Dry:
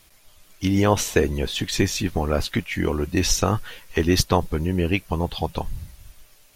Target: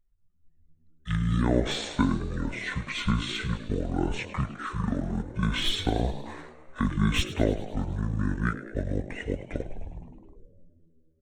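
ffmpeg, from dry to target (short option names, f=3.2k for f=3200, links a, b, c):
-filter_complex "[0:a]asetrate=25754,aresample=44100,anlmdn=0.158,acrossover=split=420|1300[a][b][c];[c]asoftclip=type=hard:threshold=-17.5dB[d];[a][b][d]amix=inputs=3:normalize=0,bandreject=f=4.8k:w=5.7,asplit=8[e][f][g][h][i][j][k][l];[f]adelay=104,afreqshift=78,volume=-14dB[m];[g]adelay=208,afreqshift=156,volume=-18dB[n];[h]adelay=312,afreqshift=234,volume=-22dB[o];[i]adelay=416,afreqshift=312,volume=-26dB[p];[j]adelay=520,afreqshift=390,volume=-30.1dB[q];[k]adelay=624,afreqshift=468,volume=-34.1dB[r];[l]adelay=728,afreqshift=546,volume=-38.1dB[s];[e][m][n][o][p][q][r][s]amix=inputs=8:normalize=0,volume=-6dB"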